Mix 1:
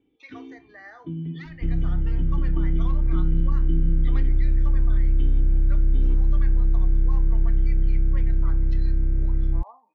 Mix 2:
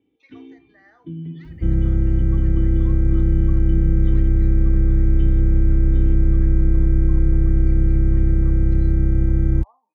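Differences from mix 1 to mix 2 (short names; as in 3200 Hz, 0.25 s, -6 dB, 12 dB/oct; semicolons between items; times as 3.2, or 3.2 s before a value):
speech -9.0 dB; second sound +11.5 dB; master: add HPF 56 Hz 12 dB/oct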